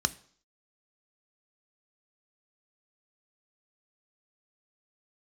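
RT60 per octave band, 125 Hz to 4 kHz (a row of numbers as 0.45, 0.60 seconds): 0.45, 0.55, 0.55, 0.55, 0.50, 0.60 seconds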